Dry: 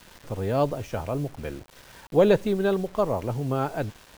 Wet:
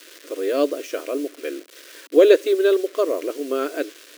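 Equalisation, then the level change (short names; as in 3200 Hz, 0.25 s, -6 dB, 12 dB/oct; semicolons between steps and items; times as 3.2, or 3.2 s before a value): brick-wall FIR high-pass 270 Hz; fixed phaser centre 350 Hz, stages 4; +8.5 dB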